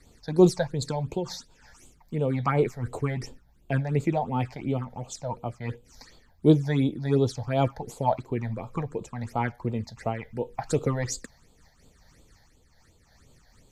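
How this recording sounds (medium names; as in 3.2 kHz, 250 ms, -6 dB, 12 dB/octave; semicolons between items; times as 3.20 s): phasing stages 8, 2.8 Hz, lowest notch 340–1800 Hz; random flutter of the level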